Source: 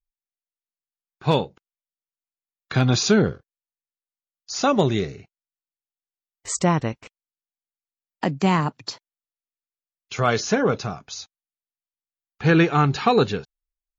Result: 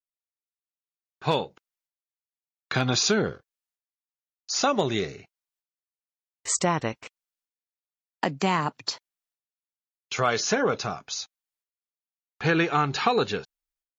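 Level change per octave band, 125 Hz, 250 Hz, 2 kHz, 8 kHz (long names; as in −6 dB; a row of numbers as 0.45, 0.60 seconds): −8.5, −7.0, −1.5, +1.0 decibels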